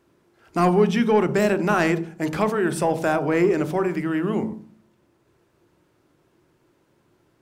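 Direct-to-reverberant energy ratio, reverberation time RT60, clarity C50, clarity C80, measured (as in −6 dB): 11.5 dB, 0.40 s, 15.0 dB, 19.0 dB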